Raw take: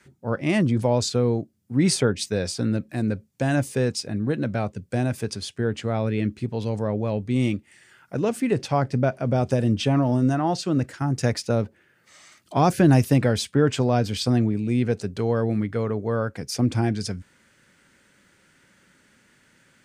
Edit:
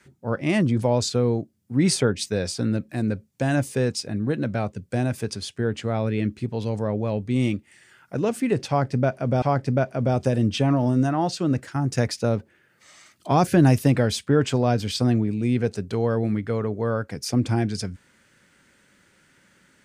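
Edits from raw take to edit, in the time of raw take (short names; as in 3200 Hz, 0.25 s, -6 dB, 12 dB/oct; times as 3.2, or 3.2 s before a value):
8.68–9.42 loop, 2 plays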